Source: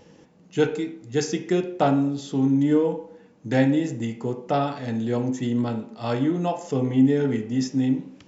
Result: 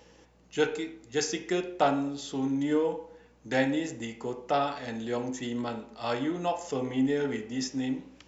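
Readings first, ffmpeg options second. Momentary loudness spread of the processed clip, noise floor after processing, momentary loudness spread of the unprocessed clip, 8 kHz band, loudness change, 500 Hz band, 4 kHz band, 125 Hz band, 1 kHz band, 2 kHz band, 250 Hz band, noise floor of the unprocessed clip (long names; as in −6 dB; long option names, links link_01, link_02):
9 LU, −59 dBFS, 9 LU, can't be measured, −7.0 dB, −5.0 dB, 0.0 dB, −13.5 dB, −2.5 dB, −0.5 dB, −8.5 dB, −54 dBFS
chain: -af "equalizer=frequency=91:width=0.31:gain=-15,aeval=exprs='val(0)+0.000708*(sin(2*PI*60*n/s)+sin(2*PI*2*60*n/s)/2+sin(2*PI*3*60*n/s)/3+sin(2*PI*4*60*n/s)/4+sin(2*PI*5*60*n/s)/5)':channel_layout=same"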